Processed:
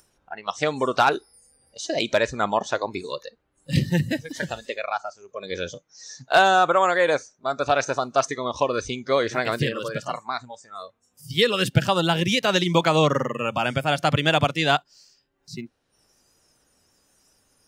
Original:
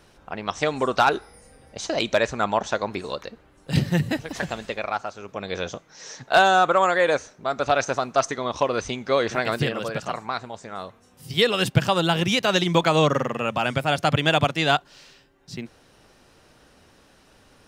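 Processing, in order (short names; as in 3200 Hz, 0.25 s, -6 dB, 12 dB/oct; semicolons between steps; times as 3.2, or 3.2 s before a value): upward compressor, threshold -42 dBFS; spectral noise reduction 18 dB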